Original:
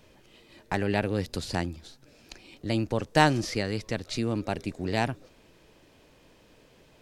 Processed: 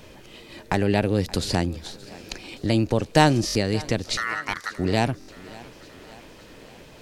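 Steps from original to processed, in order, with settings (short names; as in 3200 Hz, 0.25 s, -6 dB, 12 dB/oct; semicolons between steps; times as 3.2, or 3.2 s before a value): 4.17–4.78 ring modulator 1600 Hz; in parallel at +1 dB: compressor, threshold -36 dBFS, peak gain reduction 20 dB; on the sum: dynamic EQ 1500 Hz, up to -5 dB, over -37 dBFS, Q 0.8; thinning echo 0.574 s, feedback 62%, high-pass 170 Hz, level -20 dB; stuck buffer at 3.46/5.19, samples 1024, times 3; gain +4.5 dB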